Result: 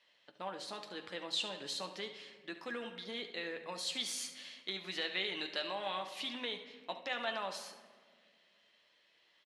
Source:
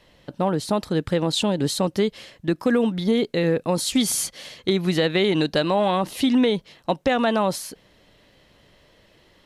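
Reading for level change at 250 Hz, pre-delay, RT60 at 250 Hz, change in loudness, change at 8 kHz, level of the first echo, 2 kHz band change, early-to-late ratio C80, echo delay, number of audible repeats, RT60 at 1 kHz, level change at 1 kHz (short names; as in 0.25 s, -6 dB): -27.5 dB, 9 ms, 2.4 s, -17.5 dB, -17.0 dB, -12.5 dB, -11.0 dB, 11.0 dB, 71 ms, 1, 1.5 s, -16.5 dB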